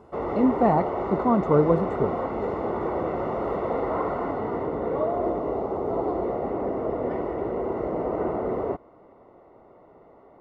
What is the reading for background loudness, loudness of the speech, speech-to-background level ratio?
-28.0 LUFS, -24.0 LUFS, 4.0 dB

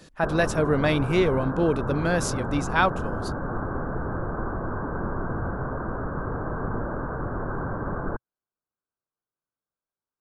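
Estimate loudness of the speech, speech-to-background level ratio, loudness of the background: -24.5 LUFS, 6.5 dB, -31.0 LUFS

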